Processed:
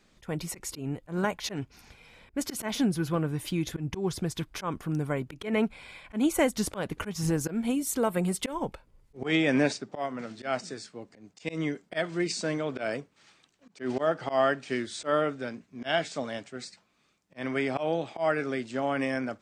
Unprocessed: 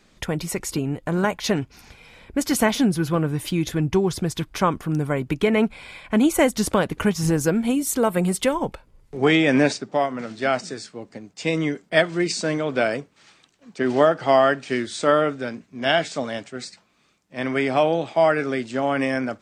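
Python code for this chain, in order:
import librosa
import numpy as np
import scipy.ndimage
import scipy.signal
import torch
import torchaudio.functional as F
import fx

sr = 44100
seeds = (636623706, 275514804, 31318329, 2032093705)

y = fx.auto_swell(x, sr, attack_ms=114.0)
y = y * 10.0 ** (-6.5 / 20.0)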